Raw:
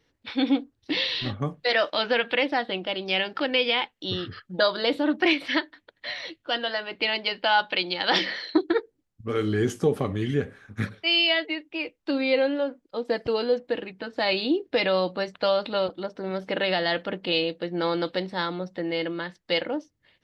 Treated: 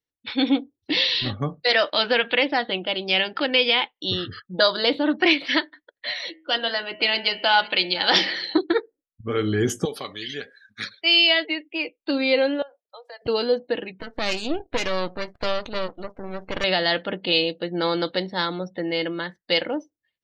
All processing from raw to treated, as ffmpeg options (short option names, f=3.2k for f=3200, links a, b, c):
-filter_complex "[0:a]asettb=1/sr,asplit=3[a][b][c];[a]atrim=end=6.144[d];[b]atrim=start=6.14:end=8.58,asetpts=PTS-STARTPTS,afade=t=in:d=0.004:c=qsin,afade=t=out:st=2.436:d=0.004:c=qsin,bandreject=f=79.78:t=h:w=4,bandreject=f=159.56:t=h:w=4,bandreject=f=239.34:t=h:w=4,bandreject=f=319.12:t=h:w=4,bandreject=f=398.9:t=h:w=4,bandreject=f=478.68:t=h:w=4,bandreject=f=558.46:t=h:w=4,bandreject=f=638.24:t=h:w=4,bandreject=f=718.02:t=h:w=4,bandreject=f=797.8:t=h:w=4,bandreject=f=877.58:t=h:w=4,bandreject=f=957.36:t=h:w=4,bandreject=f=1.03714k:t=h:w=4,bandreject=f=1.11692k:t=h:w=4,bandreject=f=1.1967k:t=h:w=4,bandreject=f=1.27648k:t=h:w=4,bandreject=f=1.35626k:t=h:w=4,bandreject=f=1.43604k:t=h:w=4,bandreject=f=1.51582k:t=h:w=4,bandreject=f=1.5956k:t=h:w=4,bandreject=f=1.67538k:t=h:w=4,bandreject=f=1.75516k:t=h:w=4,bandreject=f=1.83494k:t=h:w=4,bandreject=f=1.91472k:t=h:w=4,bandreject=f=1.9945k:t=h:w=4,bandreject=f=2.07428k:t=h:w=4,bandreject=f=2.15406k:t=h:w=4,bandreject=f=2.23384k:t=h:w=4,bandreject=f=2.31362k:t=h:w=4,bandreject=f=2.3934k:t=h:w=4,bandreject=f=2.47318k:t=h:w=4,bandreject=f=2.55296k:t=h:w=4,bandreject=f=2.63274k:t=h:w=4,bandreject=f=2.71252k:t=h:w=4,bandreject=f=2.7923k:t=h:w=4,bandreject=f=2.87208k:t=h:w=4,bandreject=f=2.95186k:t=h:w=4,bandreject=f=3.03164k:t=h:w=4,bandreject=f=3.11142k:t=h:w=4,bandreject=f=3.1912k:t=h:w=4,aecho=1:1:509:0.133,atrim=end_sample=107604[e];[c]atrim=start=8.576[f];[d][e]acrossfade=d=0.004:c1=hsin:c2=qsin[g];[g][f]acrossfade=d=0.004:c1=qsin:c2=hsin,asettb=1/sr,asplit=3[h][i][j];[h]atrim=end=9.854[k];[i]atrim=start=9.85:end=11.01,asetpts=PTS-STARTPTS,afade=t=in:d=0.004:c=qsin,afade=t=out:st=1.156:d=0.004:c=qsin,highpass=f=1.4k:p=1,equalizer=f=4.4k:t=o:w=0.79:g=12[l];[j]atrim=start=11.006[m];[k][l]acrossfade=d=0.004:c1=hsin:c2=qsin[n];[n][m]acrossfade=d=0.004:c1=qsin:c2=hsin,asettb=1/sr,asplit=3[o][p][q];[o]atrim=end=12.624[r];[p]atrim=start=12.62:end=13.22,asetpts=PTS-STARTPTS,afade=t=in:d=0.004:c=qsin,afade=t=out:st=0.596:d=0.004:c=qsin,highpass=f=650:w=0.5412,highpass=f=650:w=1.3066,acompressor=threshold=-43dB:ratio=3:attack=3.2:release=140:knee=1:detection=peak[s];[q]atrim=start=13.216[t];[r][s]acrossfade=d=0.004:c1=hsin:c2=qsin[u];[u][t]acrossfade=d=0.004:c1=qsin:c2=hsin,asettb=1/sr,asplit=3[v][w][x];[v]atrim=end=14.004[y];[w]atrim=start=14:end=16.64,asetpts=PTS-STARTPTS,afade=t=in:d=0.004:c=qsin,afade=t=out:st=2.636:d=0.004:c=qsin,bass=f=250:g=-1,treble=f=4k:g=-9,acompressor=mode=upward:threshold=-39dB:ratio=2.5:attack=3.2:release=140:knee=2.83:detection=peak,aeval=exprs='max(val(0),0)':c=same[z];[x]atrim=start=16.636[aa];[y][z]acrossfade=d=0.004:c1=hsin:c2=qsin[ab];[ab][aa]acrossfade=d=0.004:c1=qsin:c2=hsin,afftdn=nr=27:nf=-48,highshelf=f=5.2k:g=12,volume=2dB"